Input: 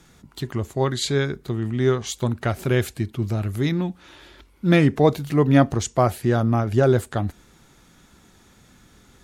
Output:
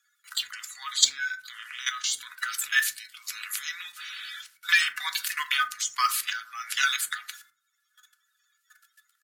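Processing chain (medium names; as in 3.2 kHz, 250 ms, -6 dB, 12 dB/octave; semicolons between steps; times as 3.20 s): coarse spectral quantiser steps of 30 dB; gate with hold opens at -41 dBFS; treble shelf 2.7 kHz +8 dB; comb 4 ms, depth 34%; level held to a coarse grid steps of 18 dB; steep high-pass 1.3 kHz 48 dB/octave; modulation noise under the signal 30 dB; on a send at -5 dB: reverberation RT60 0.40 s, pre-delay 4 ms; on the sum: three bands compressed up and down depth 40%; trim +8.5 dB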